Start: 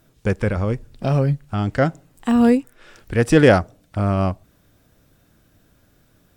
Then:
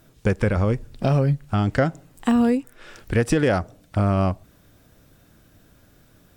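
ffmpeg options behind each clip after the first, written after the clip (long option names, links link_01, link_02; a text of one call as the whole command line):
ffmpeg -i in.wav -af "alimiter=limit=-6.5dB:level=0:latency=1:release=305,acompressor=threshold=-19dB:ratio=4,volume=3dB" out.wav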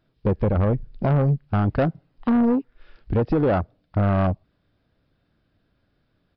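ffmpeg -i in.wav -af "afwtdn=0.0631,aresample=11025,asoftclip=type=tanh:threshold=-18dB,aresample=44100,volume=3.5dB" out.wav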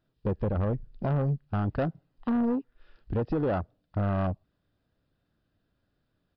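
ffmpeg -i in.wav -af "bandreject=frequency=2200:width=9.8,volume=-7.5dB" out.wav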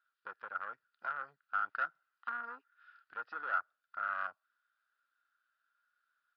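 ffmpeg -i in.wav -af "highpass=frequency=1400:width_type=q:width=11,volume=-8.5dB" out.wav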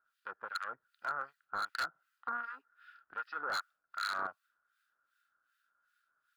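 ffmpeg -i in.wav -filter_complex "[0:a]aeval=exprs='0.0299*(abs(mod(val(0)/0.0299+3,4)-2)-1)':channel_layout=same,acrossover=split=1400[link_01][link_02];[link_01]aeval=exprs='val(0)*(1-1/2+1/2*cos(2*PI*2.6*n/s))':channel_layout=same[link_03];[link_02]aeval=exprs='val(0)*(1-1/2-1/2*cos(2*PI*2.6*n/s))':channel_layout=same[link_04];[link_03][link_04]amix=inputs=2:normalize=0,volume=8dB" out.wav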